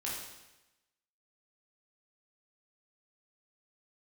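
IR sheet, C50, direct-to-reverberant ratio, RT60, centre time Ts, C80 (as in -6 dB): 1.0 dB, -5.5 dB, 1.0 s, 65 ms, 4.0 dB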